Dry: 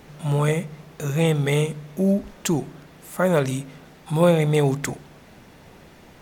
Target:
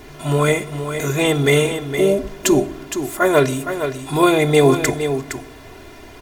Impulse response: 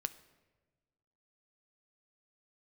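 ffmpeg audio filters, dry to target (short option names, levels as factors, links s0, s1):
-filter_complex "[0:a]aecho=1:1:2.9:0.87,asplit=3[s0][s1][s2];[s0]afade=t=out:st=3.18:d=0.02[s3];[s1]agate=range=0.0224:threshold=0.1:ratio=3:detection=peak,afade=t=in:st=3.18:d=0.02,afade=t=out:st=3.59:d=0.02[s4];[s2]afade=t=in:st=3.59:d=0.02[s5];[s3][s4][s5]amix=inputs=3:normalize=0,aecho=1:1:464:0.376,asplit=2[s6][s7];[1:a]atrim=start_sample=2205[s8];[s7][s8]afir=irnorm=-1:irlink=0,volume=2[s9];[s6][s9]amix=inputs=2:normalize=0,volume=0.668"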